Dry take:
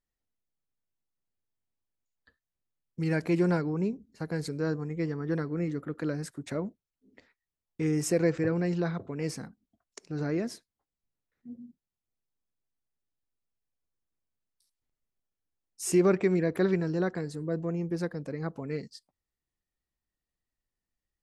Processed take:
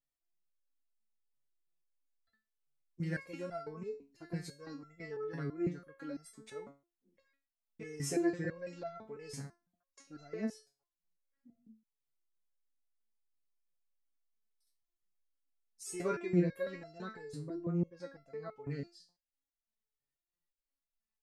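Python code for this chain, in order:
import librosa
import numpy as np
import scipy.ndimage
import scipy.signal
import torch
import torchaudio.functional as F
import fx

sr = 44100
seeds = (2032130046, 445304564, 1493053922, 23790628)

y = fx.air_absorb(x, sr, metres=83.0, at=(17.56, 18.67))
y = fx.resonator_held(y, sr, hz=6.0, low_hz=140.0, high_hz=680.0)
y = F.gain(torch.from_numpy(y), 5.0).numpy()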